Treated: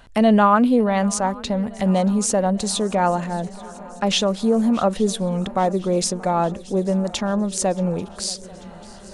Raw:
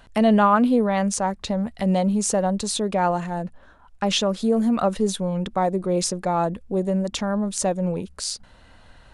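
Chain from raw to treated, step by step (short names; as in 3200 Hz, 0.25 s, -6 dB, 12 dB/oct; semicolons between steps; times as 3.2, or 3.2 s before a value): swung echo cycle 0.839 s, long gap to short 3:1, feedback 67%, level -22 dB; gain +2 dB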